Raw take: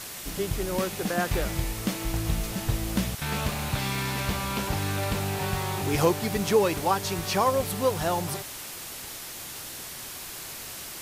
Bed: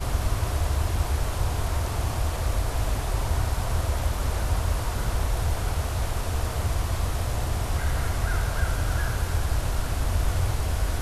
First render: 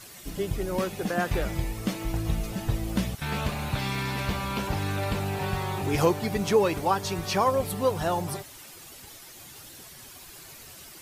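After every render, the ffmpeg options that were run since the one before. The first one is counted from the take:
-af "afftdn=nr=10:nf=-39"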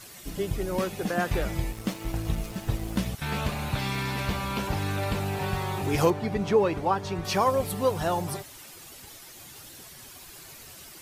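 -filter_complex "[0:a]asettb=1/sr,asplit=3[a][b][c];[a]atrim=end=1.704[d];[b]atrim=start=1.7:end=3.06,asetpts=PTS-STARTPTS,afade=t=in:d=0.004:c=qsin,afade=t=out:st=1.356:d=0.004:c=qsin,aeval=exprs='sgn(val(0))*max(abs(val(0))-0.00891,0)':c=same[e];[c]atrim=start=3.056[f];[d][e]acrossfade=d=0.004:c1=hsin:c2=qsin[g];[g][f]acrossfade=d=0.004:c1=qsin:c2=hsin,asettb=1/sr,asplit=3[h][i][j];[h]atrim=end=6.104[k];[i]atrim=start=6.1:end=7.25,asetpts=PTS-STARTPTS,afade=t=in:d=0.004:c=qsin,afade=t=out:st=1.146:d=0.004:c=qsin,aemphasis=mode=reproduction:type=75kf[l];[j]atrim=start=7.246[m];[k][l]acrossfade=d=0.004:c1=hsin:c2=qsin[n];[n][m]acrossfade=d=0.004:c1=qsin:c2=hsin"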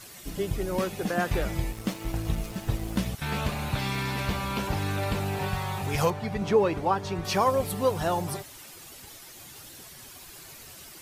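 -filter_complex "[0:a]asettb=1/sr,asplit=3[a][b][c];[a]atrim=end=5.484[d];[b]atrim=start=5.48:end=6.42,asetpts=PTS-STARTPTS,afade=t=in:d=0.004:c=qsin,afade=t=out:st=0.936:d=0.004:c=qsin,equalizer=f=330:w=2.2:g=-11.5[e];[c]atrim=start=6.416[f];[d][e]acrossfade=d=0.004:c1=hsin:c2=qsin[g];[g][f]acrossfade=d=0.004:c1=qsin:c2=hsin"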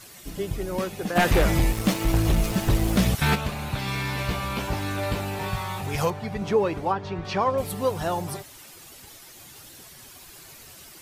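-filter_complex "[0:a]asplit=3[a][b][c];[a]afade=t=out:st=1.15:d=0.02[d];[b]aeval=exprs='0.211*sin(PI/2*2.24*val(0)/0.211)':c=same,afade=t=in:st=1.15:d=0.02,afade=t=out:st=3.34:d=0.02[e];[c]afade=t=in:st=3.34:d=0.02[f];[d][e][f]amix=inputs=3:normalize=0,asettb=1/sr,asplit=3[g][h][i];[g]atrim=end=3.864[j];[h]atrim=start=3.86:end=5.81,asetpts=PTS-STARTPTS,afade=t=in:d=0.004:c=qsin,afade=t=out:st=1.946:d=0.004:c=qsin,asplit=2[k][l];[l]adelay=17,volume=-4dB[m];[k][m]amix=inputs=2:normalize=0,atrim=end_sample=85995[n];[i]atrim=start=5.806[o];[j][n]acrossfade=d=0.004:c1=hsin:c2=qsin[p];[p][o]acrossfade=d=0.004:c1=qsin:c2=hsin,asettb=1/sr,asplit=3[q][r][s];[q]atrim=end=6.924[t];[r]atrim=start=6.92:end=7.58,asetpts=PTS-STARTPTS,afade=t=in:d=0.004:c=qsin,afade=t=out:st=0.656:d=0.004:c=qsin,lowpass=3.8k[u];[s]atrim=start=7.576[v];[t][u]acrossfade=d=0.004:c1=hsin:c2=qsin[w];[w][v]acrossfade=d=0.004:c1=qsin:c2=hsin"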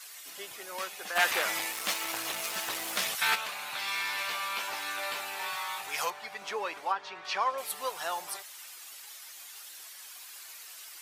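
-af "highpass=1.1k"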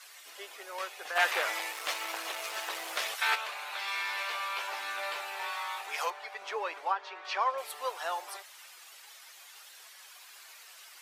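-af "highpass=f=390:w=0.5412,highpass=f=390:w=1.3066,aemphasis=mode=reproduction:type=cd"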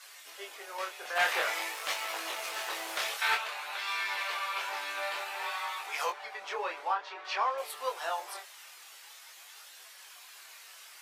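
-filter_complex "[0:a]asplit=2[a][b];[b]asoftclip=type=tanh:threshold=-24.5dB,volume=-5.5dB[c];[a][c]amix=inputs=2:normalize=0,flanger=delay=19.5:depth=8:speed=0.51"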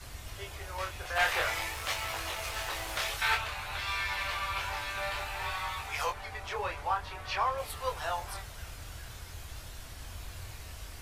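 -filter_complex "[1:a]volume=-20dB[a];[0:a][a]amix=inputs=2:normalize=0"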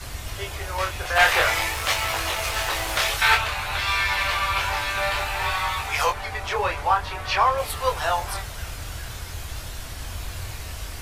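-af "volume=10.5dB"

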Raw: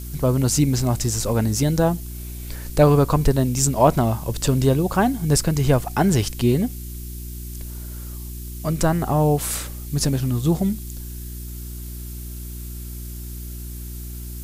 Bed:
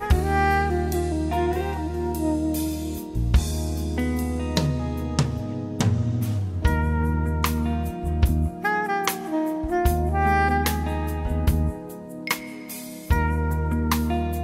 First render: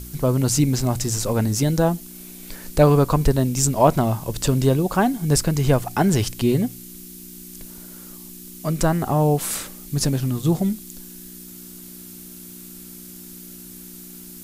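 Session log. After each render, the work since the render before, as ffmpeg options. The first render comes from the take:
-af "bandreject=f=60:t=h:w=4,bandreject=f=120:t=h:w=4"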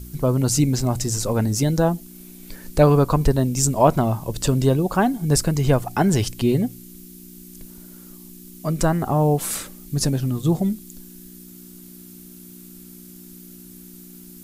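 -af "afftdn=nr=6:nf=-40"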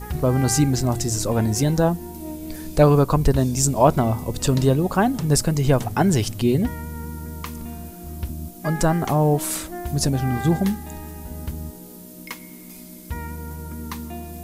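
-filter_complex "[1:a]volume=-10dB[a];[0:a][a]amix=inputs=2:normalize=0"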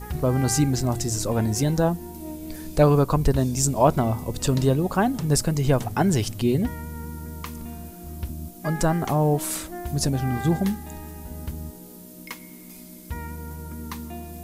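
-af "volume=-2.5dB"

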